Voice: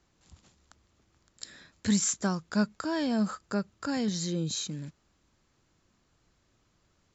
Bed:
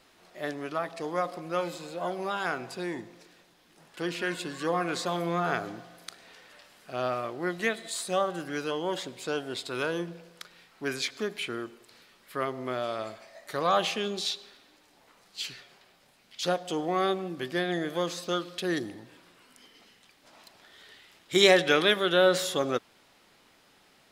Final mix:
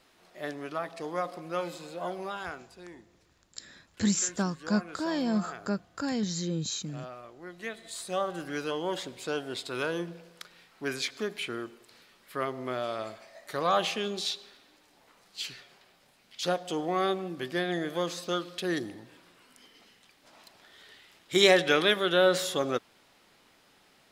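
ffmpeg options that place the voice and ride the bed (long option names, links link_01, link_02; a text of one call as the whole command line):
ffmpeg -i stem1.wav -i stem2.wav -filter_complex "[0:a]adelay=2150,volume=-0.5dB[link_01];[1:a]volume=10dB,afade=type=out:start_time=2.12:duration=0.57:silence=0.281838,afade=type=in:start_time=7.49:duration=1:silence=0.237137[link_02];[link_01][link_02]amix=inputs=2:normalize=0" out.wav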